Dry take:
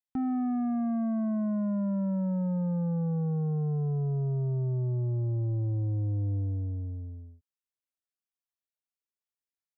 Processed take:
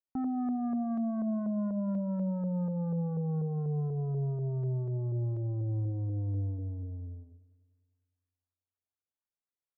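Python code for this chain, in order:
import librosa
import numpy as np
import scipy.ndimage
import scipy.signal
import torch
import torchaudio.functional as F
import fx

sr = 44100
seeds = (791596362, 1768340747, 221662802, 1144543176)

y = fx.filter_lfo_lowpass(x, sr, shape='saw_up', hz=4.1, low_hz=480.0, high_hz=1600.0, q=1.5)
y = fx.echo_wet_lowpass(y, sr, ms=100, feedback_pct=68, hz=950.0, wet_db=-18.0)
y = y * librosa.db_to_amplitude(-3.5)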